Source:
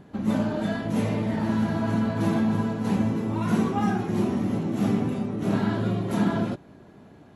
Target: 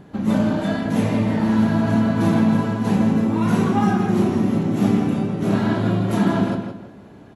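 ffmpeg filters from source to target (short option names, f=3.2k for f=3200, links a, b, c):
-filter_complex "[0:a]asplit=2[a][b];[b]adelay=31,volume=-12.5dB[c];[a][c]amix=inputs=2:normalize=0,asplit=2[d][e];[e]adelay=164,lowpass=f=4.5k:p=1,volume=-6dB,asplit=2[f][g];[g]adelay=164,lowpass=f=4.5k:p=1,volume=0.31,asplit=2[h][i];[i]adelay=164,lowpass=f=4.5k:p=1,volume=0.31,asplit=2[j][k];[k]adelay=164,lowpass=f=4.5k:p=1,volume=0.31[l];[f][h][j][l]amix=inputs=4:normalize=0[m];[d][m]amix=inputs=2:normalize=0,volume=4.5dB"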